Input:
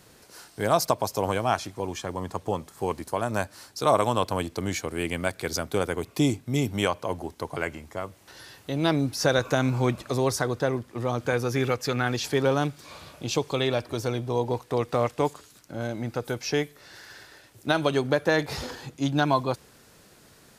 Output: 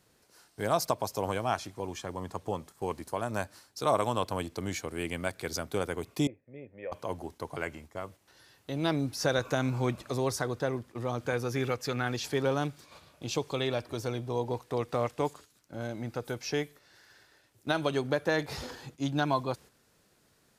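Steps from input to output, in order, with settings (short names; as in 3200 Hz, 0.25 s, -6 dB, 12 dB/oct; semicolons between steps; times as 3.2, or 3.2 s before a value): gate -43 dBFS, range -7 dB; 6.27–6.92 vocal tract filter e; gain -5.5 dB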